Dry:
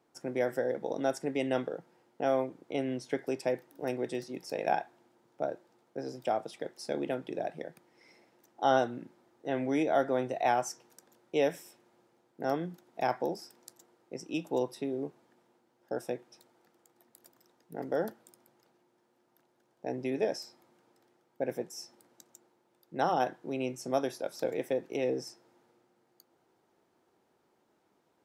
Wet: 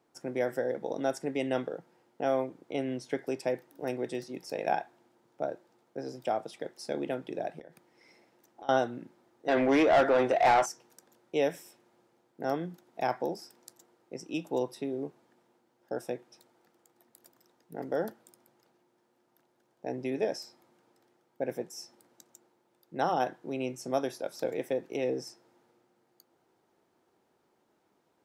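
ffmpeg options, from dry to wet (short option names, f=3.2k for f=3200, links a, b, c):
-filter_complex "[0:a]asettb=1/sr,asplit=3[a][b][c];[a]atrim=end=7.594[d];[b]atrim=start=7.59:end=8.69,asetpts=PTS-STARTPTS,afade=t=in:d=0.004:c=qsin,afade=t=out:st=1.096:d=0.004:c=qsin,acompressor=threshold=-44dB:ratio=6:attack=3.2:release=140:knee=1:detection=peak[e];[c]atrim=start=8.686[f];[d][e]acrossfade=d=0.004:c1=hsin:c2=qsin[g];[g][f]acrossfade=d=0.004:c1=qsin:c2=hsin,asettb=1/sr,asplit=3[h][i][j];[h]atrim=end=9.484[k];[i]atrim=start=9.48:end=10.66,asetpts=PTS-STARTPTS,afade=t=in:d=0.004:c=qsin,afade=t=out:st=1.176:d=0.004:c=qsin,asplit=2[l][m];[m]highpass=f=720:p=1,volume=22dB,asoftclip=type=tanh:threshold=-14.5dB[n];[l][n]amix=inputs=2:normalize=0,lowpass=f=2.5k:p=1,volume=-6dB[o];[j]atrim=start=10.656[p];[k][o]acrossfade=d=0.004:c1=hsin:c2=qsin[q];[q][p]acrossfade=d=0.004:c1=qsin:c2=hsin"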